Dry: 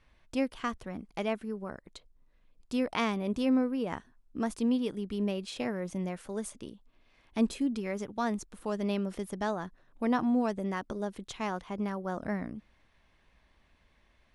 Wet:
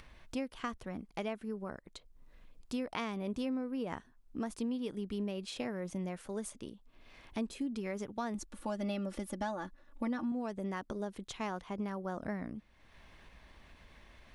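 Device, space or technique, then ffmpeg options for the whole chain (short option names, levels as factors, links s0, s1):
upward and downward compression: -filter_complex "[0:a]asettb=1/sr,asplit=3[s0][s1][s2];[s0]atrim=end=8.344[s3];[s1]atrim=start=8.34:end=10.32,asetpts=PTS-STARTPTS,afade=t=in:d=0.004:c=qsin,afade=t=out:st=1.976:d=0.004:c=qsin,aecho=1:1:3.5:0.78,atrim=end_sample=87318[s4];[s2]atrim=start=10.316[s5];[s3][s4]acrossfade=d=0.004:c1=hsin:c2=qsin[s6];[s6][s5]acrossfade=d=0.004:c1=qsin:c2=hsin,acompressor=mode=upward:threshold=0.00708:ratio=2.5,acompressor=threshold=0.0282:ratio=6,volume=0.794"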